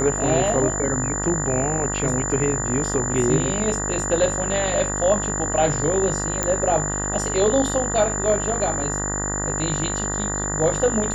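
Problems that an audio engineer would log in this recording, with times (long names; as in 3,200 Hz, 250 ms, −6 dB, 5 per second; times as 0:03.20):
mains buzz 50 Hz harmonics 39 −28 dBFS
whistle 7,100 Hz −26 dBFS
0:06.43: click −7 dBFS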